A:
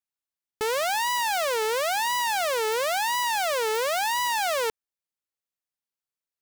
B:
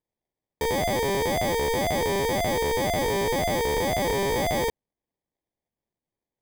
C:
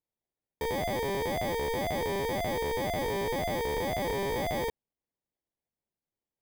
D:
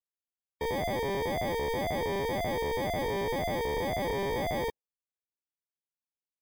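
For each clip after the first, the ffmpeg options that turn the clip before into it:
ffmpeg -i in.wav -af "acrusher=samples=32:mix=1:aa=0.000001,volume=1dB" out.wav
ffmpeg -i in.wav -af "equalizer=frequency=7300:width=0.97:gain=-5.5,volume=-6dB" out.wav
ffmpeg -i in.wav -af "afftdn=noise_reduction=18:noise_floor=-47" out.wav

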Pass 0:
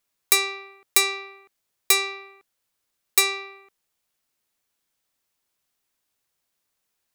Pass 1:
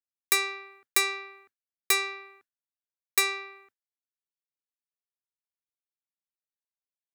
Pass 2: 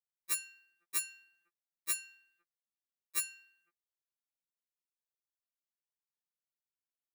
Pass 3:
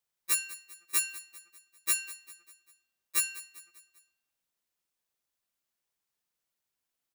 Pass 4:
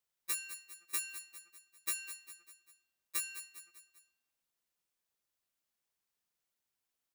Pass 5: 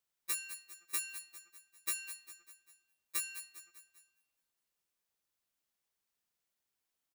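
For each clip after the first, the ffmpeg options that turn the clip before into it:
ffmpeg -i in.wav -af "agate=range=-33dB:threshold=-50dB:ratio=3:detection=peak,equalizer=frequency=100:width_type=o:width=0.67:gain=8,equalizer=frequency=250:width_type=o:width=0.67:gain=6,equalizer=frequency=1600:width_type=o:width=0.67:gain=10,volume=-6.5dB" out.wav
ffmpeg -i in.wav -af "highshelf=frequency=9500:gain=3.5,acrusher=bits=9:mode=log:mix=0:aa=0.000001,afftfilt=real='re*2.83*eq(mod(b,8),0)':imag='im*2.83*eq(mod(b,8),0)':win_size=2048:overlap=0.75,volume=-7.5dB" out.wav
ffmpeg -i in.wav -filter_complex "[0:a]asplit=2[link_01][link_02];[link_02]alimiter=level_in=4.5dB:limit=-24dB:level=0:latency=1,volume=-4.5dB,volume=0dB[link_03];[link_01][link_03]amix=inputs=2:normalize=0,aecho=1:1:198|396|594|792:0.141|0.0706|0.0353|0.0177,volume=3dB" out.wav
ffmpeg -i in.wav -af "acompressor=threshold=-31dB:ratio=6,volume=-2dB" out.wav
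ffmpeg -i in.wav -af "aecho=1:1:205|410|615|820:0.0708|0.0389|0.0214|0.0118" out.wav

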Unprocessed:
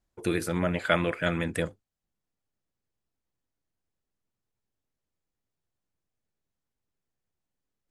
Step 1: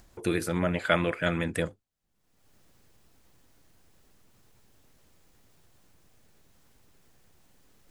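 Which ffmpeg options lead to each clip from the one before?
ffmpeg -i in.wav -af "acompressor=mode=upward:threshold=-40dB:ratio=2.5" out.wav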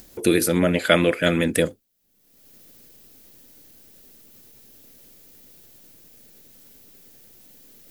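ffmpeg -i in.wav -af "equalizer=frequency=250:width_type=o:width=1:gain=9,equalizer=frequency=500:width_type=o:width=1:gain=7,equalizer=frequency=1000:width_type=o:width=1:gain=-4,equalizer=frequency=8000:width_type=o:width=1:gain=-6,crystalizer=i=6:c=0,volume=1.5dB" out.wav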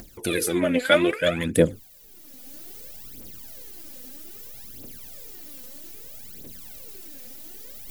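ffmpeg -i in.wav -af "aphaser=in_gain=1:out_gain=1:delay=4.1:decay=0.72:speed=0.62:type=triangular,areverse,acompressor=mode=upward:threshold=-24dB:ratio=2.5,areverse,volume=-5.5dB" out.wav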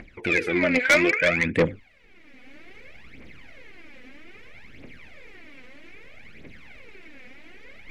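ffmpeg -i in.wav -af "lowpass=frequency=2200:width_type=q:width=5.8,asoftclip=type=tanh:threshold=-12dB" out.wav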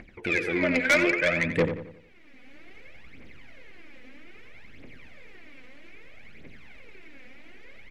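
ffmpeg -i in.wav -filter_complex "[0:a]asplit=2[link_01][link_02];[link_02]adelay=89,lowpass=frequency=2700:poles=1,volume=-8.5dB,asplit=2[link_03][link_04];[link_04]adelay=89,lowpass=frequency=2700:poles=1,volume=0.43,asplit=2[link_05][link_06];[link_06]adelay=89,lowpass=frequency=2700:poles=1,volume=0.43,asplit=2[link_07][link_08];[link_08]adelay=89,lowpass=frequency=2700:poles=1,volume=0.43,asplit=2[link_09][link_10];[link_10]adelay=89,lowpass=frequency=2700:poles=1,volume=0.43[link_11];[link_01][link_03][link_05][link_07][link_09][link_11]amix=inputs=6:normalize=0,volume=-3.5dB" out.wav

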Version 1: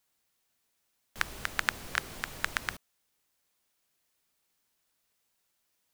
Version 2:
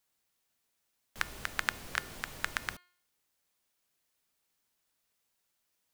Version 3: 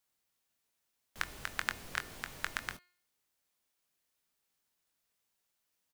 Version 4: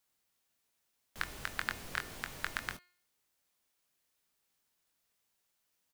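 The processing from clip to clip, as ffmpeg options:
ffmpeg -i in.wav -af "bandreject=frequency=356.3:width_type=h:width=4,bandreject=frequency=712.6:width_type=h:width=4,bandreject=frequency=1068.9:width_type=h:width=4,bandreject=frequency=1425.2:width_type=h:width=4,bandreject=frequency=1781.5:width_type=h:width=4,bandreject=frequency=2137.8:width_type=h:width=4,bandreject=frequency=2494.1:width_type=h:width=4,bandreject=frequency=2850.4:width_type=h:width=4,bandreject=frequency=3206.7:width_type=h:width=4,bandreject=frequency=3563:width_type=h:width=4,bandreject=frequency=3919.3:width_type=h:width=4,bandreject=frequency=4275.6:width_type=h:width=4,bandreject=frequency=4631.9:width_type=h:width=4,bandreject=frequency=4988.2:width_type=h:width=4,volume=-2.5dB" out.wav
ffmpeg -i in.wav -filter_complex "[0:a]asplit=2[link_01][link_02];[link_02]adelay=22,volume=-10dB[link_03];[link_01][link_03]amix=inputs=2:normalize=0,volume=-3dB" out.wav
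ffmpeg -i in.wav -af "asoftclip=type=tanh:threshold=-17.5dB,volume=2dB" out.wav

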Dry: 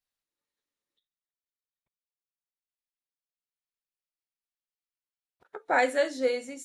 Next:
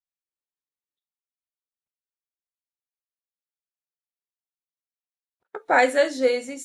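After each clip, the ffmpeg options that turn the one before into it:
ffmpeg -i in.wav -af "agate=range=-20dB:threshold=-56dB:ratio=16:detection=peak,volume=6dB" out.wav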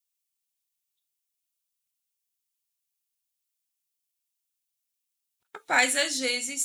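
ffmpeg -i in.wav -af "equalizer=frequency=490:width_type=o:width=1.6:gain=-13.5,aexciter=amount=1.5:drive=9.2:freq=2400" out.wav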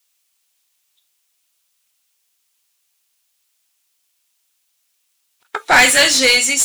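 ffmpeg -i in.wav -filter_complex "[0:a]asplit=2[link_01][link_02];[link_02]highpass=frequency=720:poles=1,volume=22dB,asoftclip=type=tanh:threshold=-7.5dB[link_03];[link_01][link_03]amix=inputs=2:normalize=0,lowpass=frequency=5700:poles=1,volume=-6dB,volume=5.5dB" out.wav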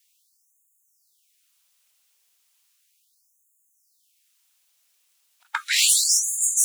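ffmpeg -i in.wav -af "afftfilt=real='re*lt(hypot(re,im),0.501)':imag='im*lt(hypot(re,im),0.501)':win_size=1024:overlap=0.75,afftfilt=real='re*gte(b*sr/1024,280*pow(6600/280,0.5+0.5*sin(2*PI*0.35*pts/sr)))':imag='im*gte(b*sr/1024,280*pow(6600/280,0.5+0.5*sin(2*PI*0.35*pts/sr)))':win_size=1024:overlap=0.75" out.wav

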